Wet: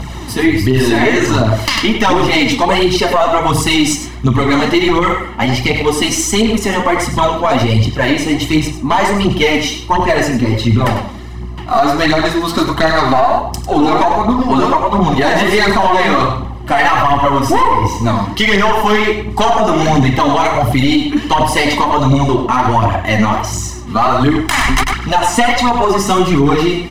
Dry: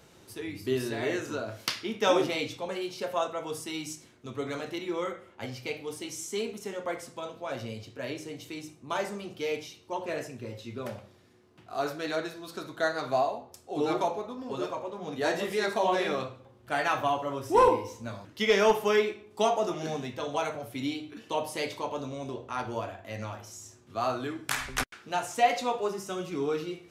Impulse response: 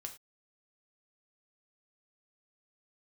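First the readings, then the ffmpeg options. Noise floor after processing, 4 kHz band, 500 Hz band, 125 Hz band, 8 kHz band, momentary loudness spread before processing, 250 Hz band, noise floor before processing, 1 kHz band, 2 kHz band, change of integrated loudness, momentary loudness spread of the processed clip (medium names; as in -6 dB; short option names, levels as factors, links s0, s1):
-25 dBFS, +20.0 dB, +14.5 dB, +26.5 dB, +19.5 dB, 14 LU, +22.5 dB, -57 dBFS, +19.0 dB, +19.5 dB, +18.5 dB, 4 LU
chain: -filter_complex "[0:a]aemphasis=mode=reproduction:type=cd,aecho=1:1:1:0.67,acompressor=threshold=0.0224:ratio=2.5,aeval=exprs='(tanh(17.8*val(0)+0.4)-tanh(0.4))/17.8':c=same,aeval=exprs='val(0)+0.00126*(sin(2*PI*60*n/s)+sin(2*PI*2*60*n/s)/2+sin(2*PI*3*60*n/s)/3+sin(2*PI*4*60*n/s)/4+sin(2*PI*5*60*n/s)/5)':c=same,aphaser=in_gain=1:out_gain=1:delay=4.7:decay=0.58:speed=1.4:type=triangular,asplit=2[s0][s1];[s1]adelay=99.13,volume=0.355,highshelf=f=4000:g=-2.23[s2];[s0][s2]amix=inputs=2:normalize=0,alimiter=level_in=23.7:limit=0.891:release=50:level=0:latency=1,volume=0.891"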